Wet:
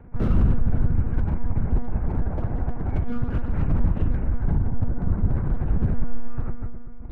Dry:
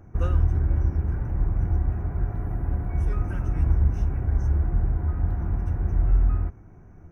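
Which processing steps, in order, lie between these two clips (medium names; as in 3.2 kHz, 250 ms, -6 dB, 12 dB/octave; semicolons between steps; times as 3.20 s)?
4.46–5.34 s: low-pass 1.1 kHz -> 1.4 kHz 6 dB/octave; FDN reverb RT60 2.1 s, low-frequency decay 1.25×, high-frequency decay 0.65×, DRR 2.5 dB; monotone LPC vocoder at 8 kHz 240 Hz; loudness maximiser +10 dB; slew-rate limiter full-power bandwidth 60 Hz; trim -8.5 dB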